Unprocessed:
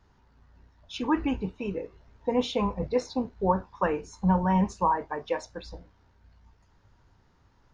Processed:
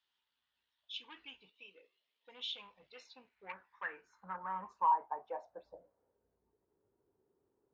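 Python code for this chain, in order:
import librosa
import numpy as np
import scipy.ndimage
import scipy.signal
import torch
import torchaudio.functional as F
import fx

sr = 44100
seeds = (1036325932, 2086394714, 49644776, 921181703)

y = fx.cabinet(x, sr, low_hz=220.0, low_slope=12, high_hz=5700.0, hz=(490.0, 880.0, 1500.0, 3600.0), db=(4, -7, -10, -4), at=(1.5, 2.29))
y = 10.0 ** (-19.0 / 20.0) * np.tanh(y / 10.0 ** (-19.0 / 20.0))
y = fx.filter_sweep_bandpass(y, sr, from_hz=3300.0, to_hz=400.0, start_s=2.78, end_s=6.44, q=4.8)
y = y * librosa.db_to_amplitude(-1.0)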